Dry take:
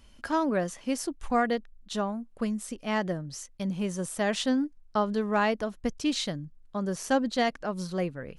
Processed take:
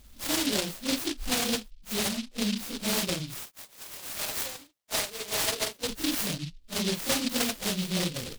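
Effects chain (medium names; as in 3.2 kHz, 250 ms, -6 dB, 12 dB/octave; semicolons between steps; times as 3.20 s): phase randomisation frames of 100 ms; compression, threshold -27 dBFS, peak gain reduction 7.5 dB; 3.39–5.87 s: high-pass 1.1 kHz -> 340 Hz 24 dB/octave; delay time shaken by noise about 3.6 kHz, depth 0.32 ms; trim +3 dB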